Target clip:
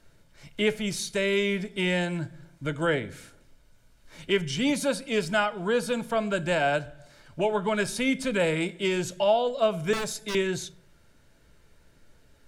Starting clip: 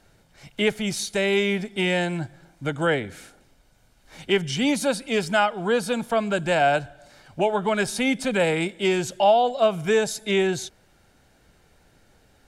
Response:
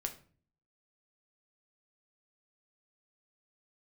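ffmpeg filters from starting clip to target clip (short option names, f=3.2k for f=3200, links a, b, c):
-filter_complex "[0:a]asettb=1/sr,asplit=3[a][b][c];[a]atrim=end=9.934[d];[b]atrim=start=9.93:end=10.35,asetpts=PTS-STARTPTS,afade=t=in:d=0.004:c=qsin,afade=t=out:st=0.416:d=0.004:c=qsin,aeval=exprs='0.0794*(abs(mod(val(0)/0.0794+3,4)-2)-1)':c=same[e];[c]atrim=start=10.346[f];[d][e]acrossfade=d=0.004:c1=hsin:c2=qsin[g];[g][f]acrossfade=d=0.004:c1=qsin:c2=hsin,asuperstop=centerf=770:order=4:qfactor=5.6,asplit=2[h][i];[1:a]atrim=start_sample=2205,lowshelf=f=80:g=11.5[j];[i][j]afir=irnorm=-1:irlink=0,volume=-6dB[k];[h][k]amix=inputs=2:normalize=0,volume=-6.5dB"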